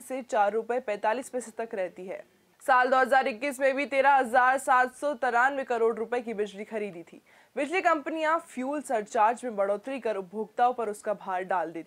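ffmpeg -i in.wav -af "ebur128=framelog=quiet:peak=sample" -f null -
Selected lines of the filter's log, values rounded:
Integrated loudness:
  I:         -27.2 LUFS
  Threshold: -37.5 LUFS
Loudness range:
  LRA:         4.9 LU
  Threshold: -47.0 LUFS
  LRA low:   -29.4 LUFS
  LRA high:  -24.5 LUFS
Sample peak:
  Peak:      -10.0 dBFS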